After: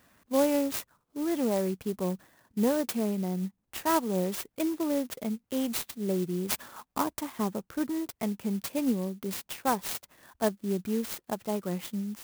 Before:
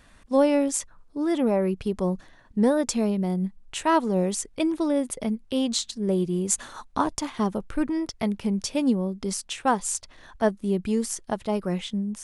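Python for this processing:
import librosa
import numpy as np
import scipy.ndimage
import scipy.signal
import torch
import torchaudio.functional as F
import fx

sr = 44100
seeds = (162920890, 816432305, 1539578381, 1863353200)

y = scipy.signal.sosfilt(scipy.signal.butter(2, 110.0, 'highpass', fs=sr, output='sos'), x)
y = fx.clock_jitter(y, sr, seeds[0], jitter_ms=0.058)
y = F.gain(torch.from_numpy(y), -5.0).numpy()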